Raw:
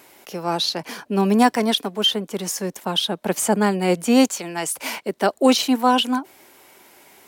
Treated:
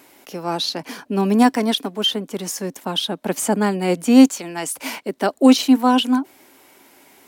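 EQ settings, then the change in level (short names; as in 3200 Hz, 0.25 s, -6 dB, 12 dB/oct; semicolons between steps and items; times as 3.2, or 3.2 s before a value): bell 270 Hz +8.5 dB 0.31 oct; -1.0 dB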